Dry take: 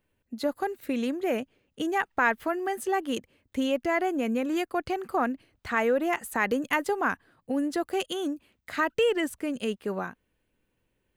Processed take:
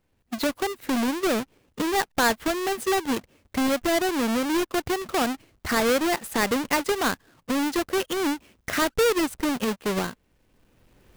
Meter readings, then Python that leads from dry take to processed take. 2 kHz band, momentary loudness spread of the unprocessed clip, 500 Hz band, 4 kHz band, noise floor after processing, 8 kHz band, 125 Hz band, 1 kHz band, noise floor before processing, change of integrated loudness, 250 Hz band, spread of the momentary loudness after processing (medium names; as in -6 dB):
+2.0 dB, 9 LU, +2.5 dB, +8.5 dB, -70 dBFS, +12.0 dB, +7.5 dB, +2.5 dB, -76 dBFS, +3.5 dB, +4.0 dB, 8 LU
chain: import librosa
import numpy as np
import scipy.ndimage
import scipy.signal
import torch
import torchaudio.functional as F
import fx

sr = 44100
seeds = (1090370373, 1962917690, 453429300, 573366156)

y = fx.halfwave_hold(x, sr)
y = fx.recorder_agc(y, sr, target_db=-19.0, rise_db_per_s=13.0, max_gain_db=30)
y = y * librosa.db_to_amplitude(-1.5)